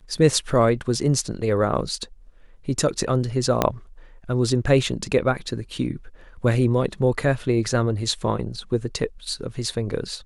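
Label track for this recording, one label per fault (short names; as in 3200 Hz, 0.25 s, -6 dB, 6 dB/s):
3.620000	3.620000	pop -4 dBFS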